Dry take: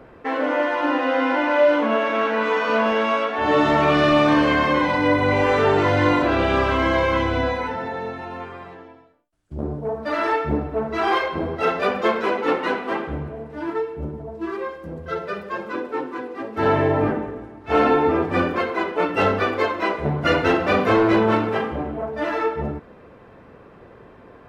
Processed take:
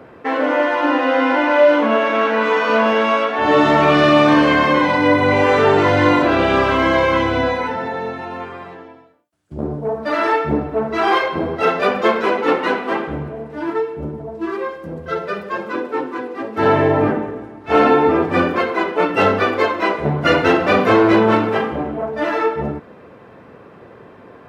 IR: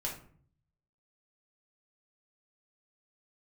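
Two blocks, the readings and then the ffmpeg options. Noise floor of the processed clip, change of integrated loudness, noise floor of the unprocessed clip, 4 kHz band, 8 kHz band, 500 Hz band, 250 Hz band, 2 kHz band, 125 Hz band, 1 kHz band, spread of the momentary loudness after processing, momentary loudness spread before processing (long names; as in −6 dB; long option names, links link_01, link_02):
−43 dBFS, +4.5 dB, −47 dBFS, +4.5 dB, can't be measured, +4.5 dB, +4.5 dB, +4.5 dB, +2.5 dB, +4.5 dB, 14 LU, 13 LU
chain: -af "highpass=99,volume=4.5dB"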